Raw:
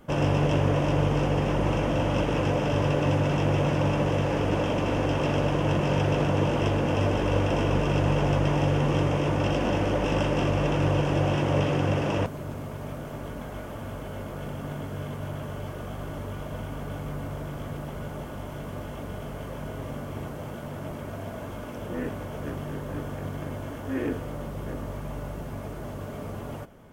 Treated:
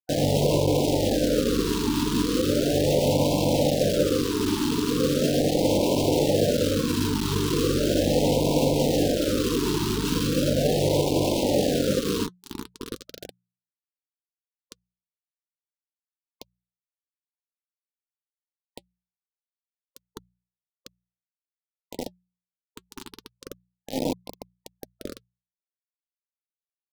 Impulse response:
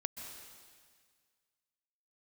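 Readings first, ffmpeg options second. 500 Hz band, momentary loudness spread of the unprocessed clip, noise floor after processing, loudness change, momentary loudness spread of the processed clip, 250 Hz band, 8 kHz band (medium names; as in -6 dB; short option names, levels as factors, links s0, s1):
+3.5 dB, 13 LU, under -85 dBFS, +4.5 dB, 16 LU, +3.0 dB, +13.0 dB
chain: -filter_complex "[0:a]adynamicequalizer=threshold=0.00398:dfrequency=4100:dqfactor=1:tfrequency=4100:tqfactor=1:attack=5:release=100:ratio=0.375:range=2:mode=boostabove:tftype=bell,bandreject=f=2100:w=16,asplit=2[s0][s1];[s1]adelay=1033,lowpass=f=2900:p=1,volume=0.398,asplit=2[s2][s3];[s3]adelay=1033,lowpass=f=2900:p=1,volume=0.19,asplit=2[s4][s5];[s5]adelay=1033,lowpass=f=2900:p=1,volume=0.19[s6];[s2][s4][s6]amix=inputs=3:normalize=0[s7];[s0][s7]amix=inputs=2:normalize=0,acrusher=bits=3:mix=0:aa=0.000001,bandreject=f=60:t=h:w=6,bandreject=f=120:t=h:w=6,bandreject=f=180:t=h:w=6,acompressor=mode=upward:threshold=0.02:ratio=2.5,equalizer=f=250:t=o:w=1:g=7,equalizer=f=500:t=o:w=1:g=8,equalizer=f=2000:t=o:w=1:g=-10,equalizer=f=4000:t=o:w=1:g=5,flanger=delay=1.2:depth=3.2:regen=-60:speed=0.29:shape=sinusoidal,afftfilt=real='re*(1-between(b*sr/1024,600*pow(1500/600,0.5+0.5*sin(2*PI*0.38*pts/sr))/1.41,600*pow(1500/600,0.5+0.5*sin(2*PI*0.38*pts/sr))*1.41))':imag='im*(1-between(b*sr/1024,600*pow(1500/600,0.5+0.5*sin(2*PI*0.38*pts/sr))/1.41,600*pow(1500/600,0.5+0.5*sin(2*PI*0.38*pts/sr))*1.41))':win_size=1024:overlap=0.75"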